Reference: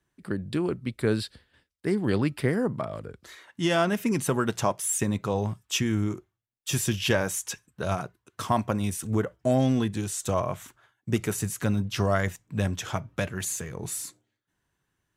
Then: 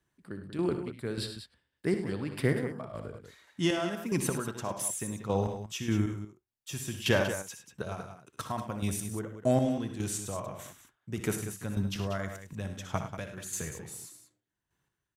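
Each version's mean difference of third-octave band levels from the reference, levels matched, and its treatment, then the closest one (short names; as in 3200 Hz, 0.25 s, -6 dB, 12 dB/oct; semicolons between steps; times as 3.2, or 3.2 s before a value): 6.5 dB: chopper 1.7 Hz, depth 65%, duty 30%; on a send: tapped delay 61/76/103/188 ms -11.5/-13.5/-12/-10.5 dB; on the sum: gain -2 dB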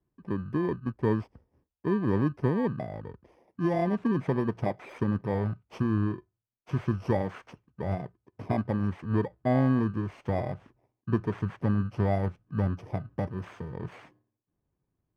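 8.0 dB: FFT order left unsorted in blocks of 32 samples; LPF 1200 Hz 12 dB/oct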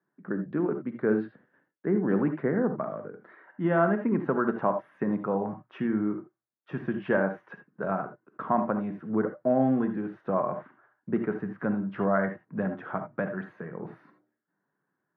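10.5 dB: elliptic band-pass 170–1600 Hz, stop band 60 dB; non-linear reverb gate 0.1 s rising, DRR 7.5 dB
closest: first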